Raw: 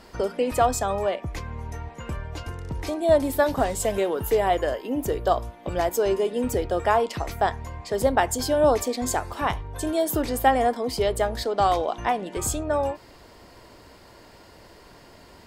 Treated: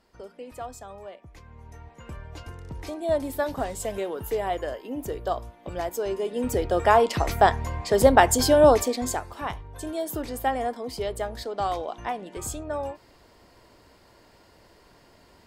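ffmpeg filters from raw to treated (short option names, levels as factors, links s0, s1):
-af "volume=1.78,afade=t=in:st=1.31:d=1.07:silence=0.298538,afade=t=in:st=6.15:d=1.13:silence=0.281838,afade=t=out:st=8.48:d=0.79:silence=0.266073"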